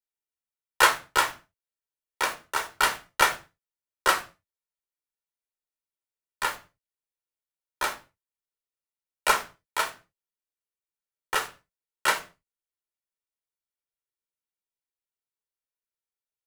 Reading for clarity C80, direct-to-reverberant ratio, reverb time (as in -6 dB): 20.5 dB, 6.5 dB, no single decay rate